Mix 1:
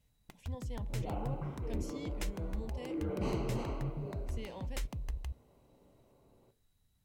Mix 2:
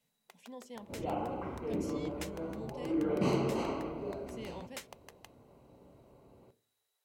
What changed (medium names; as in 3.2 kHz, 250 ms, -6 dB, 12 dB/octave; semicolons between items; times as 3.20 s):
first sound: add brick-wall FIR high-pass 370 Hz; second sound +6.5 dB